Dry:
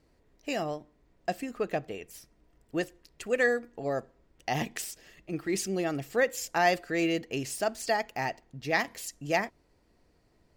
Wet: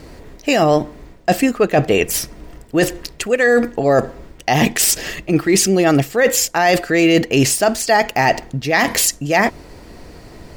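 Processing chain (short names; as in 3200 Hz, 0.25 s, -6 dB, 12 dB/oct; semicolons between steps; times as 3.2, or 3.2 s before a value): reverse; compressor 20:1, threshold -38 dBFS, peak gain reduction 19.5 dB; reverse; maximiser +31.5 dB; gain -3 dB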